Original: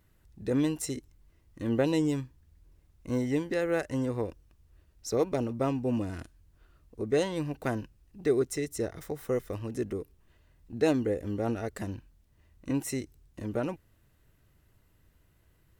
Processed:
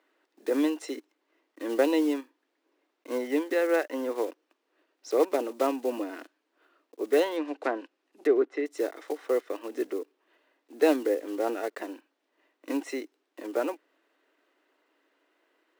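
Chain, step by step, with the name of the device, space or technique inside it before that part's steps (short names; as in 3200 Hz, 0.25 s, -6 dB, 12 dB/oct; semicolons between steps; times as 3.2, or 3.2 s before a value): early digital voice recorder (BPF 290–3600 Hz; block floating point 5-bit); elliptic high-pass 280 Hz, stop band 50 dB; 7.36–8.66 treble ducked by the level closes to 2100 Hz, closed at -29 dBFS; gain +5 dB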